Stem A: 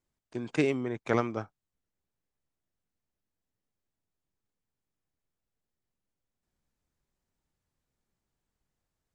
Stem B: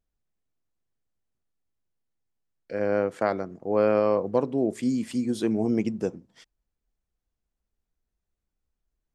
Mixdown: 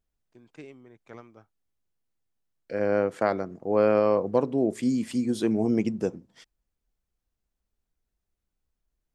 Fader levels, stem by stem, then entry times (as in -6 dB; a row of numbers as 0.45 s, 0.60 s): -18.5 dB, +0.5 dB; 0.00 s, 0.00 s